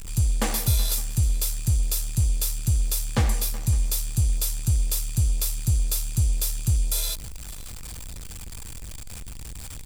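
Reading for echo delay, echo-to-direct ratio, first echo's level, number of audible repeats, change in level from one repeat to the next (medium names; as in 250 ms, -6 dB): 562 ms, -22.0 dB, -22.0 dB, 1, no regular repeats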